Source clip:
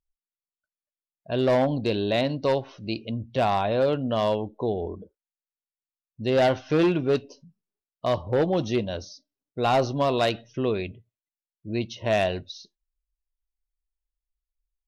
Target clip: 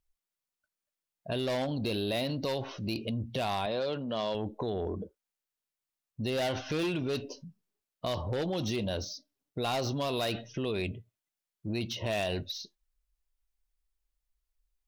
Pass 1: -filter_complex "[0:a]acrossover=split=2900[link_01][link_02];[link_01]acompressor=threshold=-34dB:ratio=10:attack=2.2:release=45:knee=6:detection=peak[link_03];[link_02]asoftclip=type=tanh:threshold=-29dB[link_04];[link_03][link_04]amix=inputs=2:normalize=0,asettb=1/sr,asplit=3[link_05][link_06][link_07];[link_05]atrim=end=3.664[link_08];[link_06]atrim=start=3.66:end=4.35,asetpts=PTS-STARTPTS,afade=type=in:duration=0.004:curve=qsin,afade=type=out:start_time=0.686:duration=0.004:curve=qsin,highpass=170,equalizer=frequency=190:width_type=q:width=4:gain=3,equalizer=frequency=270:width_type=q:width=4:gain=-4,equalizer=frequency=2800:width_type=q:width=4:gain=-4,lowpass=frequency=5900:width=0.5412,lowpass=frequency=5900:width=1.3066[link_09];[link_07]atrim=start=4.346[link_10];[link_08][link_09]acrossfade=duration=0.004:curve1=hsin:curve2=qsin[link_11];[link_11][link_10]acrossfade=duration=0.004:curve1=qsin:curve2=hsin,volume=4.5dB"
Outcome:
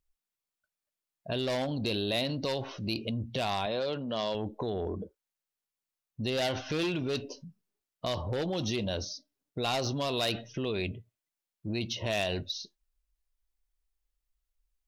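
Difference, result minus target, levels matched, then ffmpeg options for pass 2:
soft clipping: distortion −8 dB
-filter_complex "[0:a]acrossover=split=2900[link_01][link_02];[link_01]acompressor=threshold=-34dB:ratio=10:attack=2.2:release=45:knee=6:detection=peak[link_03];[link_02]asoftclip=type=tanh:threshold=-39dB[link_04];[link_03][link_04]amix=inputs=2:normalize=0,asettb=1/sr,asplit=3[link_05][link_06][link_07];[link_05]atrim=end=3.664[link_08];[link_06]atrim=start=3.66:end=4.35,asetpts=PTS-STARTPTS,afade=type=in:duration=0.004:curve=qsin,afade=type=out:start_time=0.686:duration=0.004:curve=qsin,highpass=170,equalizer=frequency=190:width_type=q:width=4:gain=3,equalizer=frequency=270:width_type=q:width=4:gain=-4,equalizer=frequency=2800:width_type=q:width=4:gain=-4,lowpass=frequency=5900:width=0.5412,lowpass=frequency=5900:width=1.3066[link_09];[link_07]atrim=start=4.346[link_10];[link_08][link_09]acrossfade=duration=0.004:curve1=hsin:curve2=qsin[link_11];[link_11][link_10]acrossfade=duration=0.004:curve1=qsin:curve2=hsin,volume=4.5dB"

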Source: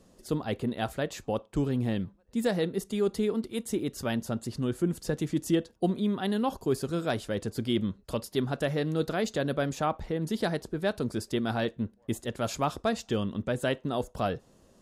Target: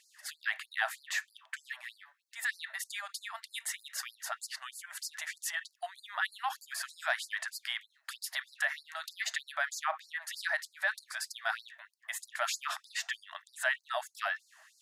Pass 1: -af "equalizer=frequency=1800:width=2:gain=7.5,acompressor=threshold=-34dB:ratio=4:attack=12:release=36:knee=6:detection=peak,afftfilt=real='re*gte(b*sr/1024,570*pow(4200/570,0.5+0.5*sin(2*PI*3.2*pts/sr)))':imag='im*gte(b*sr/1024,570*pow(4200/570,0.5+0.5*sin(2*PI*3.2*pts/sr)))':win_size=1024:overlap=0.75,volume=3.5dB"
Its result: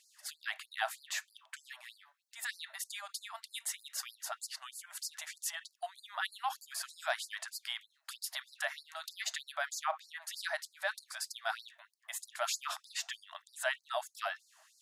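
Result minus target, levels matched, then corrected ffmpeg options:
2,000 Hz band −3.0 dB
-af "equalizer=frequency=1800:width=2:gain=18,acompressor=threshold=-34dB:ratio=4:attack=12:release=36:knee=6:detection=peak,afftfilt=real='re*gte(b*sr/1024,570*pow(4200/570,0.5+0.5*sin(2*PI*3.2*pts/sr)))':imag='im*gte(b*sr/1024,570*pow(4200/570,0.5+0.5*sin(2*PI*3.2*pts/sr)))':win_size=1024:overlap=0.75,volume=3.5dB"

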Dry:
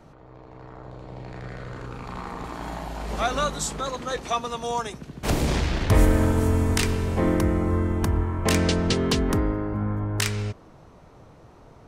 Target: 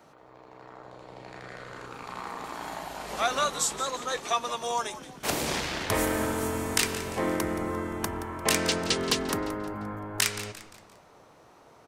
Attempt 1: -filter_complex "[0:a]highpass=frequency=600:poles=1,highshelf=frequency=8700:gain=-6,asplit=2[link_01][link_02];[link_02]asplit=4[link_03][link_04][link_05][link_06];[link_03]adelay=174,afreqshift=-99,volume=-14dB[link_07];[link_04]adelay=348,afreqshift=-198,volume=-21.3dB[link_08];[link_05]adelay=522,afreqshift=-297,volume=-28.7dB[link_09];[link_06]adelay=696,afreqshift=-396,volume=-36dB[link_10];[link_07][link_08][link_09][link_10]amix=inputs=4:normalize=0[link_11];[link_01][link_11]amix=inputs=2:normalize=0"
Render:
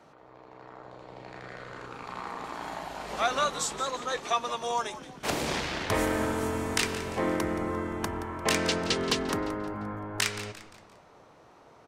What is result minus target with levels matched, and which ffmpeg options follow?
8,000 Hz band −3.5 dB
-filter_complex "[0:a]highpass=frequency=600:poles=1,highshelf=frequency=8700:gain=6,asplit=2[link_01][link_02];[link_02]asplit=4[link_03][link_04][link_05][link_06];[link_03]adelay=174,afreqshift=-99,volume=-14dB[link_07];[link_04]adelay=348,afreqshift=-198,volume=-21.3dB[link_08];[link_05]adelay=522,afreqshift=-297,volume=-28.7dB[link_09];[link_06]adelay=696,afreqshift=-396,volume=-36dB[link_10];[link_07][link_08][link_09][link_10]amix=inputs=4:normalize=0[link_11];[link_01][link_11]amix=inputs=2:normalize=0"

